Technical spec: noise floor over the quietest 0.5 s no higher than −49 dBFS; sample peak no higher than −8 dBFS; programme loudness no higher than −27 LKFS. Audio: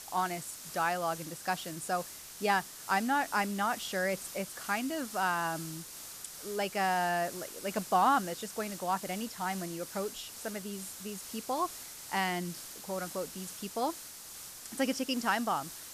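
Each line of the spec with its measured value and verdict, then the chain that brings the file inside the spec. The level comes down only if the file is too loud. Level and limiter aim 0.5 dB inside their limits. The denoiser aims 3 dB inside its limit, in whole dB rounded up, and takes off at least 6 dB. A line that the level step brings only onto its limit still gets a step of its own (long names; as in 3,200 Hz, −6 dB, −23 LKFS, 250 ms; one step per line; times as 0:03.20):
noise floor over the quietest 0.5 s −47 dBFS: out of spec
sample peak −15.5 dBFS: in spec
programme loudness −33.5 LKFS: in spec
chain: broadband denoise 6 dB, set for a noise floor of −47 dBFS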